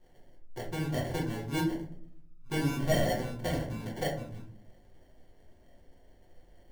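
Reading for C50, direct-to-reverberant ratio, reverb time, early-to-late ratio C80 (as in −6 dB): 7.0 dB, −4.0 dB, 0.55 s, 11.5 dB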